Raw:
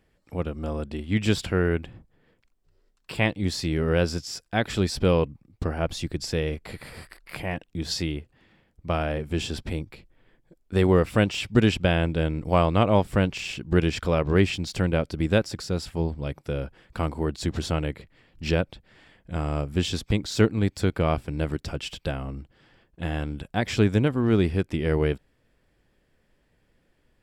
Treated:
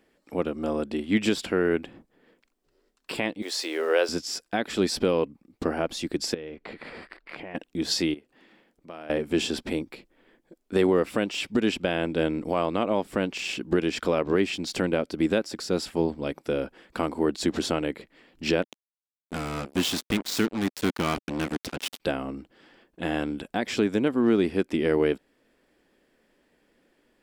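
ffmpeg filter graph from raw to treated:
ffmpeg -i in.wav -filter_complex "[0:a]asettb=1/sr,asplit=3[link_01][link_02][link_03];[link_01]atrim=end=3.424[link_04];[link_02]atrim=start=3.42:end=4.09,asetpts=PTS-STARTPTS,afade=type=in:duration=0.004:curve=qsin,afade=type=out:start_time=0.666:duration=0.004:curve=qsin,highpass=frequency=430:width=0.5412,highpass=frequency=430:width=1.3066,aeval=exprs='val(0)*gte(abs(val(0)),0.00398)':channel_layout=same[link_05];[link_03]atrim=start=4.086[link_06];[link_04][link_05]acrossfade=duration=0.004:curve1=hsin:curve2=qsin[link_07];[link_07][link_06]acrossfade=duration=0.004:curve1=qsin:curve2=hsin,asettb=1/sr,asplit=3[link_08][link_09][link_10];[link_08]atrim=end=6.344[link_11];[link_09]atrim=start=6.34:end=7.55,asetpts=PTS-STARTPTS,afade=type=in:duration=0.004:curve=qsin,afade=type=out:start_time=1.206:duration=0.004:curve=qsin,lowpass=3300,acompressor=threshold=-37dB:ratio=8:attack=3.2:release=140:knee=1:detection=peak[link_12];[link_10]atrim=start=7.546[link_13];[link_11][link_12]acrossfade=duration=0.004:curve1=hsin:curve2=qsin[link_14];[link_14][link_13]acrossfade=duration=0.004:curve1=qsin:curve2=hsin,asettb=1/sr,asplit=3[link_15][link_16][link_17];[link_15]atrim=end=8.144[link_18];[link_16]atrim=start=8.14:end=9.1,asetpts=PTS-STARTPTS,afade=type=in:duration=0.004:curve=qsin,afade=type=out:start_time=0.956:duration=0.004:curve=qsin,equalizer=frequency=68:width=0.93:gain=-9,acompressor=threshold=-54dB:ratio=2:attack=3.2:release=140:knee=1:detection=peak[link_19];[link_17]atrim=start=9.096[link_20];[link_18][link_19]acrossfade=duration=0.004:curve1=hsin:curve2=qsin[link_21];[link_21][link_20]acrossfade=duration=0.004:curve1=qsin:curve2=hsin,asettb=1/sr,asplit=3[link_22][link_23][link_24];[link_22]atrim=end=18.624[link_25];[link_23]atrim=start=18.62:end=22,asetpts=PTS-STARTPTS,afade=type=in:duration=0.004:curve=qsin,afade=type=out:start_time=3.376:duration=0.004:curve=qsin,equalizer=frequency=550:width=1.3:gain=-13,acrusher=bits=4:mix=0:aa=0.5[link_26];[link_24]atrim=start=21.996[link_27];[link_25][link_26]acrossfade=duration=0.004:curve1=hsin:curve2=qsin[link_28];[link_28][link_27]acrossfade=duration=0.004:curve1=qsin:curve2=hsin,lowshelf=frequency=170:width_type=q:width=1.5:gain=-13.5,alimiter=limit=-15dB:level=0:latency=1:release=380,volume=3dB" out.wav

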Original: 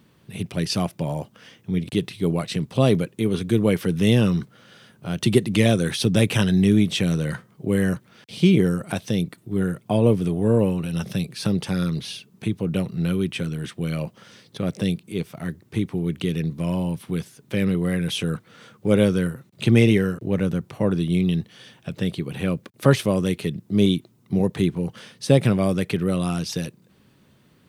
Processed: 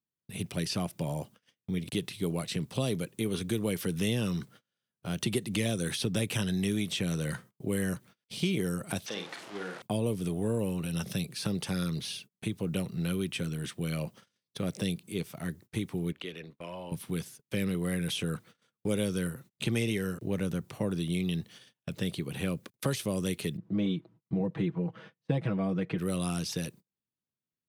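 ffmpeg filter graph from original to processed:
ffmpeg -i in.wav -filter_complex "[0:a]asettb=1/sr,asplit=3[link_01][link_02][link_03];[link_01]atrim=end=9.064[link_04];[link_02]atrim=start=9.06:end=9.82,asetpts=PTS-STARTPTS,afade=type=in:duration=0.004:curve=qsin,afade=type=out:start_time=0.756:duration=0.004:curve=qsin,aeval=exprs='val(0)+0.5*0.0376*sgn(val(0))':channel_layout=same,highpass=570,lowpass=3900,asplit=2[link_05][link_06];[link_06]adelay=49,volume=-6dB[link_07];[link_05][link_07]amix=inputs=2:normalize=0,atrim=end_sample=33516[link_08];[link_03]atrim=start=9.816[link_09];[link_04][link_08]acrossfade=duration=0.004:curve1=hsin:curve2=qsin[link_10];[link_10][link_09]acrossfade=duration=0.004:curve1=qsin:curve2=hsin,asettb=1/sr,asplit=3[link_11][link_12][link_13];[link_11]atrim=end=16.124[link_14];[link_12]atrim=start=16.12:end=16.92,asetpts=PTS-STARTPTS,afade=type=in:duration=0.004:curve=qsin,afade=type=out:start_time=0.796:duration=0.004:curve=qsin,tremolo=f=93:d=0.4,acrossover=split=400 4000:gain=0.126 1 0.141[link_15][link_16][link_17];[link_15][link_16][link_17]amix=inputs=3:normalize=0[link_18];[link_13]atrim=start=16.916[link_19];[link_14][link_18]acrossfade=duration=0.004:curve1=hsin:curve2=qsin[link_20];[link_20][link_19]acrossfade=duration=0.004:curve1=qsin:curve2=hsin,asettb=1/sr,asplit=3[link_21][link_22][link_23];[link_21]atrim=end=23.574[link_24];[link_22]atrim=start=23.57:end=25.98,asetpts=PTS-STARTPTS,afade=type=in:duration=0.004:curve=qsin,afade=type=out:start_time=2.406:duration=0.004:curve=qsin,lowpass=1600,aecho=1:1:6.2:0.85,atrim=end_sample=106281[link_25];[link_23]atrim=start=25.976[link_26];[link_24][link_25]acrossfade=duration=0.004:curve1=hsin:curve2=qsin[link_27];[link_27][link_26]acrossfade=duration=0.004:curve1=qsin:curve2=hsin,agate=range=-35dB:threshold=-43dB:ratio=16:detection=peak,acrossover=split=500|3100[link_28][link_29][link_30];[link_28]acompressor=threshold=-23dB:ratio=4[link_31];[link_29]acompressor=threshold=-32dB:ratio=4[link_32];[link_30]acompressor=threshold=-36dB:ratio=4[link_33];[link_31][link_32][link_33]amix=inputs=3:normalize=0,highshelf=frequency=4700:gain=8.5,volume=-6dB" out.wav

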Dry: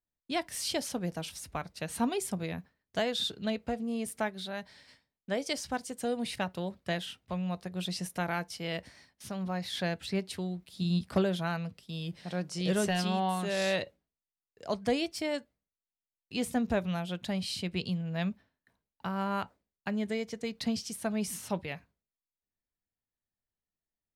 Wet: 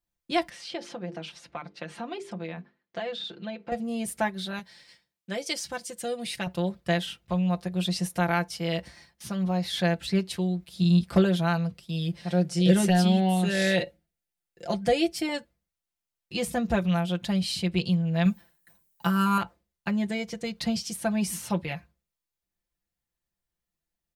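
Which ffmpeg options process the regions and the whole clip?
ffmpeg -i in.wav -filter_complex "[0:a]asettb=1/sr,asplit=3[link_01][link_02][link_03];[link_01]atrim=end=0.494[link_04];[link_02]atrim=start=0.49:end=3.72,asetpts=PTS-STARTPTS,afade=type=in:duration=0.004:curve=qsin,afade=type=out:start_time=3.226:duration=0.004:curve=qsin,bandreject=frequency=50:width_type=h:width=6,bandreject=frequency=100:width_type=h:width=6,bandreject=frequency=150:width_type=h:width=6,bandreject=frequency=200:width_type=h:width=6,bandreject=frequency=250:width_type=h:width=6,bandreject=frequency=300:width_type=h:width=6,bandreject=frequency=350:width_type=h:width=6,bandreject=frequency=400:width_type=h:width=6,bandreject=frequency=450:width_type=h:width=6,acompressor=threshold=-36dB:ratio=3:attack=3.2:release=140:knee=1:detection=peak,highpass=230,lowpass=3400[link_05];[link_03]atrim=start=3.716[link_06];[link_04][link_05]acrossfade=duration=0.004:curve1=hsin:curve2=qsin[link_07];[link_07][link_06]acrossfade=duration=0.004:curve1=qsin:curve2=hsin,asettb=1/sr,asplit=3[link_08][link_09][link_10];[link_08]atrim=end=4.594[link_11];[link_09]atrim=start=4.59:end=6.47,asetpts=PTS-STARTPTS,afade=type=in:duration=0.004:curve=qsin,afade=type=out:start_time=1.876:duration=0.004:curve=qsin,highpass=frequency=280:poles=1,equalizer=frequency=870:width_type=o:width=2.1:gain=-5[link_12];[link_10]atrim=start=6.466[link_13];[link_11][link_12]acrossfade=duration=0.004:curve1=hsin:curve2=qsin[link_14];[link_14][link_13]acrossfade=duration=0.004:curve1=qsin:curve2=hsin,asettb=1/sr,asplit=3[link_15][link_16][link_17];[link_15]atrim=end=12.314[link_18];[link_16]atrim=start=12.31:end=15.29,asetpts=PTS-STARTPTS,afade=type=in:duration=0.004:curve=qsin,afade=type=out:start_time=2.976:duration=0.004:curve=qsin,equalizer=frequency=1100:width_type=o:width=0.28:gain=-12,aecho=1:1:5.7:0.36,atrim=end_sample=131418[link_19];[link_17]atrim=start=15.286[link_20];[link_18][link_19]acrossfade=duration=0.004:curve1=hsin:curve2=qsin[link_21];[link_21][link_20]acrossfade=duration=0.004:curve1=qsin:curve2=hsin,asettb=1/sr,asplit=3[link_22][link_23][link_24];[link_22]atrim=end=18.254[link_25];[link_23]atrim=start=18.25:end=19.38,asetpts=PTS-STARTPTS,afade=type=in:duration=0.004:curve=qsin,afade=type=out:start_time=1.126:duration=0.004:curve=qsin,aemphasis=mode=production:type=75fm,aecho=1:1:5.9:0.69,atrim=end_sample=49833[link_26];[link_24]atrim=start=19.376[link_27];[link_25][link_26]acrossfade=duration=0.004:curve1=hsin:curve2=qsin[link_28];[link_28][link_27]acrossfade=duration=0.004:curve1=qsin:curve2=hsin,equalizer=frequency=68:width_type=o:width=0.82:gain=11,aecho=1:1:5.8:0.76,volume=3dB" out.wav

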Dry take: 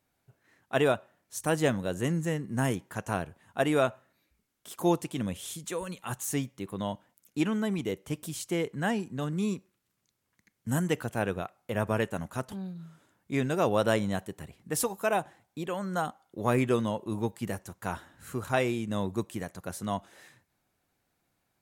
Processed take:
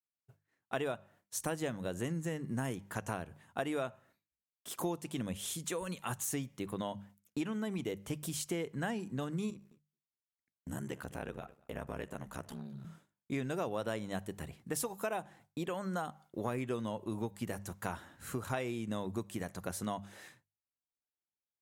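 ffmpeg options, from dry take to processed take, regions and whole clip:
ffmpeg -i in.wav -filter_complex "[0:a]asettb=1/sr,asplit=3[link_01][link_02][link_03];[link_01]atrim=end=9.504[link_04];[link_02]atrim=start=9.5:end=12.85,asetpts=PTS-STARTPTS,afade=type=in:duration=0.004:curve=qsin,afade=type=out:start_time=3.346:duration=0.004:curve=qsin,acompressor=threshold=-42dB:ratio=2:attack=3.2:release=140:knee=1:detection=peak,asplit=2[link_05][link_06];[link_06]adelay=213,lowpass=frequency=3800:poles=1,volume=-18.5dB,asplit=2[link_07][link_08];[link_08]adelay=213,lowpass=frequency=3800:poles=1,volume=0.36,asplit=2[link_09][link_10];[link_10]adelay=213,lowpass=frequency=3800:poles=1,volume=0.36[link_11];[link_05][link_07][link_09][link_11]amix=inputs=4:normalize=0,atrim=end_sample=147735,aeval=exprs='val(0)*sin(2*PI*34*n/s)':channel_layout=same[link_12];[link_03]atrim=start=12.846[link_13];[link_04][link_12]acrossfade=duration=0.004:curve1=hsin:curve2=qsin[link_14];[link_14][link_13]acrossfade=duration=0.004:curve1=qsin:curve2=hsin,agate=range=-33dB:threshold=-53dB:ratio=3:detection=peak,bandreject=frequency=50:width_type=h:width=6,bandreject=frequency=100:width_type=h:width=6,bandreject=frequency=150:width_type=h:width=6,bandreject=frequency=200:width_type=h:width=6,acompressor=threshold=-35dB:ratio=5,volume=1dB" out.wav

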